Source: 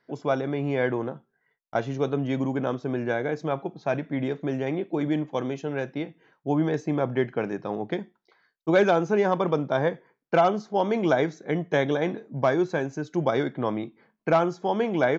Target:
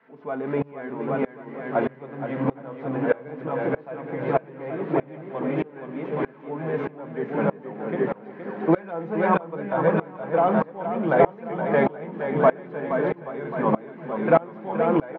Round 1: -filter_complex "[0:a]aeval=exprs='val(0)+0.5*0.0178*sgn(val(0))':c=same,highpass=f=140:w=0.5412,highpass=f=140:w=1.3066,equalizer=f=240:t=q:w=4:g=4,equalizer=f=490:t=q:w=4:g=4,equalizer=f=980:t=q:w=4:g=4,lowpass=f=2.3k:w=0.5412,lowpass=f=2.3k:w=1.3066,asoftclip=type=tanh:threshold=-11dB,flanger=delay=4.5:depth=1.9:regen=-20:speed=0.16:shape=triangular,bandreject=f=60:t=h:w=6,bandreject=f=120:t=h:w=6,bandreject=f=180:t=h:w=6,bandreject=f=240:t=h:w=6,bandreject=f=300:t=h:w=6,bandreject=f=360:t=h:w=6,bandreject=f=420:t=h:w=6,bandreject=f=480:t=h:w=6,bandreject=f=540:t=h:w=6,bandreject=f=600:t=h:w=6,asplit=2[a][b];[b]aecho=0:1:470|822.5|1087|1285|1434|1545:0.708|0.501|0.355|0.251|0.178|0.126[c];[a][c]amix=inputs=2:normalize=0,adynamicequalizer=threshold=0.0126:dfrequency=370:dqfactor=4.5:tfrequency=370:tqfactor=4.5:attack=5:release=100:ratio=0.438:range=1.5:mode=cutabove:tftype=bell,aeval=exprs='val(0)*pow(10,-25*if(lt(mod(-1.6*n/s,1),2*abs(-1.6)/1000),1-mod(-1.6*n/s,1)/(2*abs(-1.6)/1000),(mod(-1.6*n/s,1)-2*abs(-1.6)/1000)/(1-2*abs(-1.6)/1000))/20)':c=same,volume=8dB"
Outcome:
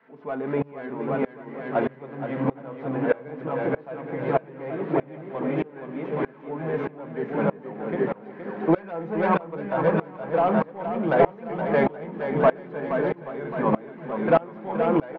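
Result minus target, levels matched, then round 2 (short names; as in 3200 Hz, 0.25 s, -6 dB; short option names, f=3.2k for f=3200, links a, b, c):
soft clip: distortion +12 dB
-filter_complex "[0:a]aeval=exprs='val(0)+0.5*0.0178*sgn(val(0))':c=same,highpass=f=140:w=0.5412,highpass=f=140:w=1.3066,equalizer=f=240:t=q:w=4:g=4,equalizer=f=490:t=q:w=4:g=4,equalizer=f=980:t=q:w=4:g=4,lowpass=f=2.3k:w=0.5412,lowpass=f=2.3k:w=1.3066,asoftclip=type=tanh:threshold=-4dB,flanger=delay=4.5:depth=1.9:regen=-20:speed=0.16:shape=triangular,bandreject=f=60:t=h:w=6,bandreject=f=120:t=h:w=6,bandreject=f=180:t=h:w=6,bandreject=f=240:t=h:w=6,bandreject=f=300:t=h:w=6,bandreject=f=360:t=h:w=6,bandreject=f=420:t=h:w=6,bandreject=f=480:t=h:w=6,bandreject=f=540:t=h:w=6,bandreject=f=600:t=h:w=6,asplit=2[a][b];[b]aecho=0:1:470|822.5|1087|1285|1434|1545:0.708|0.501|0.355|0.251|0.178|0.126[c];[a][c]amix=inputs=2:normalize=0,adynamicequalizer=threshold=0.0126:dfrequency=370:dqfactor=4.5:tfrequency=370:tqfactor=4.5:attack=5:release=100:ratio=0.438:range=1.5:mode=cutabove:tftype=bell,aeval=exprs='val(0)*pow(10,-25*if(lt(mod(-1.6*n/s,1),2*abs(-1.6)/1000),1-mod(-1.6*n/s,1)/(2*abs(-1.6)/1000),(mod(-1.6*n/s,1)-2*abs(-1.6)/1000)/(1-2*abs(-1.6)/1000))/20)':c=same,volume=8dB"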